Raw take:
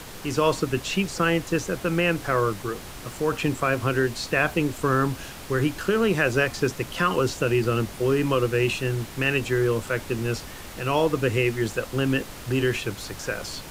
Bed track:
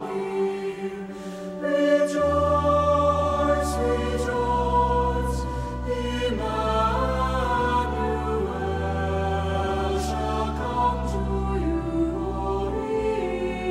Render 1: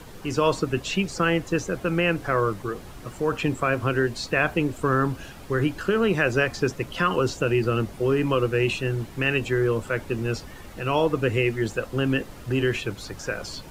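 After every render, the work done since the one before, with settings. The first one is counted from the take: denoiser 9 dB, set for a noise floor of -40 dBFS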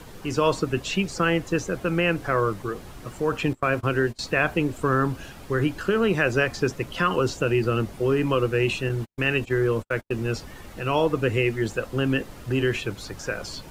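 3.53–4.19 gate -31 dBFS, range -23 dB; 8.89–10.25 gate -32 dBFS, range -55 dB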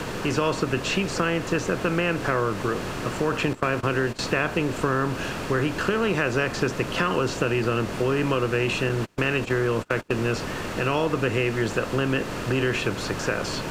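per-bin compression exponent 0.6; compressor 2.5:1, threshold -21 dBFS, peak gain reduction 6.5 dB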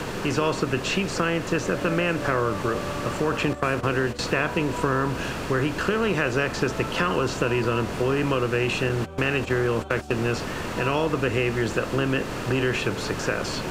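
add bed track -14.5 dB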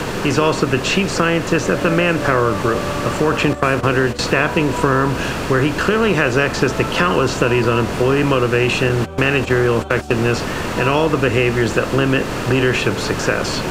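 gain +8 dB; limiter -1 dBFS, peak gain reduction 1 dB

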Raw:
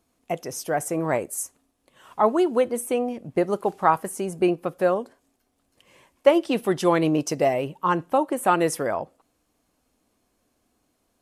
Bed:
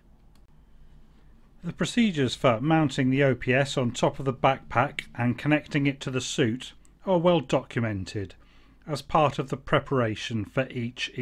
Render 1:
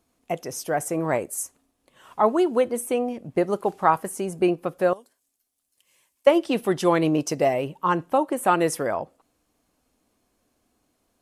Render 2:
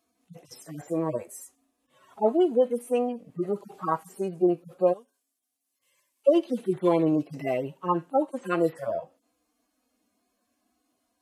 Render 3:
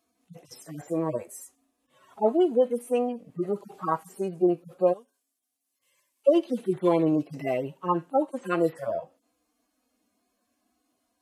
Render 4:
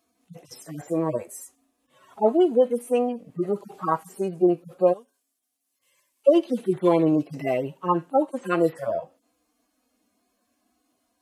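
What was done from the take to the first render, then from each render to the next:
4.93–6.27 pre-emphasis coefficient 0.9
median-filter separation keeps harmonic; HPF 180 Hz 6 dB/oct
nothing audible
gain +3 dB

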